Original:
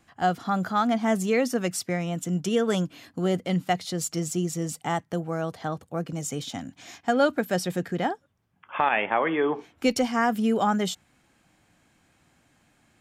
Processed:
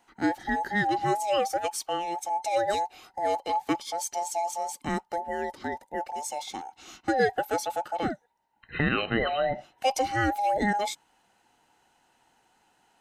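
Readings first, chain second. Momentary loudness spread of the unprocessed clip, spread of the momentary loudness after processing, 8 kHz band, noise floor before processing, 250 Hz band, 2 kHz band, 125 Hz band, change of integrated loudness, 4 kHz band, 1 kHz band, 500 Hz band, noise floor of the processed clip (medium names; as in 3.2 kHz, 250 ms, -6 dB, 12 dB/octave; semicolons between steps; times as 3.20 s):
9 LU, 9 LU, -2.0 dB, -66 dBFS, -6.5 dB, 0.0 dB, -7.5 dB, -2.5 dB, -1.0 dB, +1.0 dB, -2.5 dB, -68 dBFS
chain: every band turned upside down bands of 1 kHz; trim -2.5 dB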